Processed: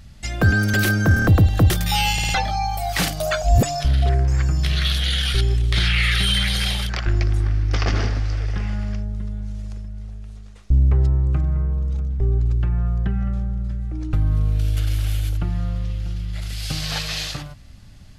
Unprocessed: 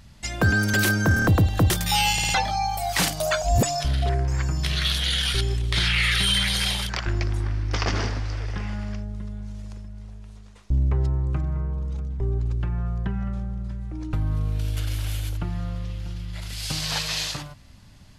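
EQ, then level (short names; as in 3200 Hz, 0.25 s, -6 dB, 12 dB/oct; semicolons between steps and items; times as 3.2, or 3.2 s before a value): notch 970 Hz, Q 6.8; dynamic EQ 7900 Hz, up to -4 dB, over -42 dBFS, Q 0.88; low shelf 95 Hz +7 dB; +1.5 dB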